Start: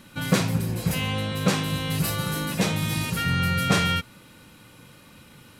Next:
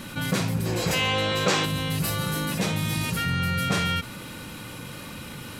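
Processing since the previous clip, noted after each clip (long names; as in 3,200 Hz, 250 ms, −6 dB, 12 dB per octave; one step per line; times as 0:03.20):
gain on a spectral selection 0:00.66–0:01.66, 280–8,200 Hz +9 dB
envelope flattener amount 50%
level −7.5 dB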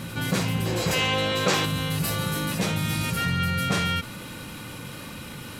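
backwards echo 508 ms −12 dB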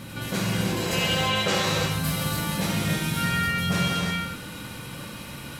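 reverb whose tail is shaped and stops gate 370 ms flat, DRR −3.5 dB
level −4.5 dB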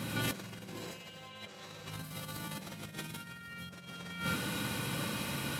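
high-pass filter 98 Hz
compressor whose output falls as the input rises −33 dBFS, ratio −0.5
level −6 dB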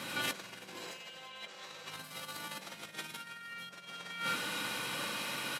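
meter weighting curve A
single-tap delay 337 ms −23.5 dB
level +1 dB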